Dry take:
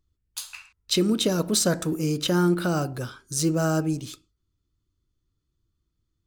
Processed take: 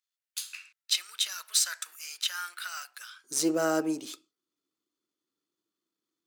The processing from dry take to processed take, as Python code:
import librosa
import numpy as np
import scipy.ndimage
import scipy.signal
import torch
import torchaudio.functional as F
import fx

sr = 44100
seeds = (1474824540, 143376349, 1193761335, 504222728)

y = np.where(x < 0.0, 10.0 ** (-3.0 / 20.0) * x, x)
y = fx.highpass(y, sr, hz=fx.steps((0.0, 1500.0), (3.24, 270.0)), slope=24)